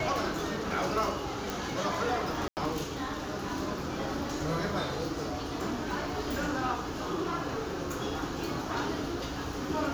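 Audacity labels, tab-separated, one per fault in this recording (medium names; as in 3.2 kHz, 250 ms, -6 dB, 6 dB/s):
1.500000	1.500000	pop
2.480000	2.570000	dropout 89 ms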